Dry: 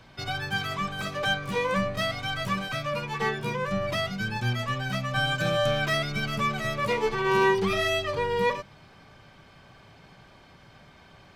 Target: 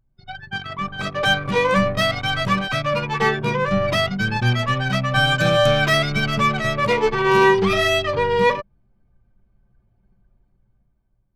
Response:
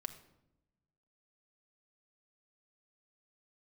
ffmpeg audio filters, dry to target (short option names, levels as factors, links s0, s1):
-af "dynaudnorm=f=260:g=7:m=2.82,anlmdn=251"